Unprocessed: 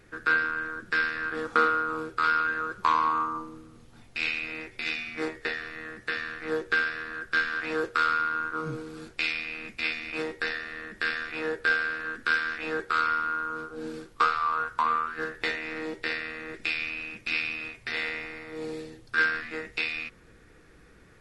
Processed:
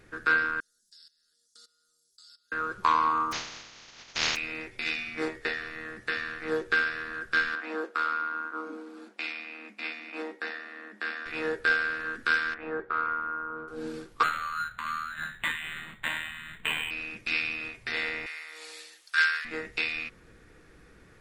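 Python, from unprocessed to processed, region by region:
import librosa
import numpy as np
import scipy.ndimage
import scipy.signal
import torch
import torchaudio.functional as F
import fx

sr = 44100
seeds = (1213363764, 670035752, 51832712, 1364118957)

y = fx.chain(x, sr, fx.cheby2_highpass(hz=2600.0, order=4, stop_db=40),
    fx.comb(ms=4.8, depth=0.61),
    fx.level_steps(step_db=18), at=(0.6, 2.52))
y = fx.spec_flatten(y, sr, power=0.13, at=(3.31, 4.35), fade=0.02)
y = fx.cheby1_lowpass(y, sr, hz=6600.0, order=6, at=(3.31, 4.35), fade=0.02)
y = fx.peak_eq(y, sr, hz=3000.0, db=5.5, octaves=2.7, at=(3.31, 4.35), fade=0.02)
y = fx.chain(y, sr, fx.cheby_ripple_highpass(hz=200.0, ripple_db=6),
    fx.high_shelf(hz=4200.0, db=-5.5), at=(7.55, 11.26))
y = fx.chain(y, sr, fx.lowpass(hz=1300.0, slope=12),
    fx.low_shelf(hz=340.0, db=-4.5), at=(12.54, 13.68))
y = fx.chain(y, sr, fx.cheby1_bandstop(low_hz=200.0, high_hz=1400.0, order=3),
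    fx.peak_eq(hz=3500.0, db=6.5, octaves=1.4),
    fx.resample_linear(factor=8), at=(14.23, 16.91))
y = fx.chain(y, sr, fx.highpass(hz=1300.0, slope=12),
    fx.high_shelf(hz=2900.0, db=9.0), at=(18.26, 19.45))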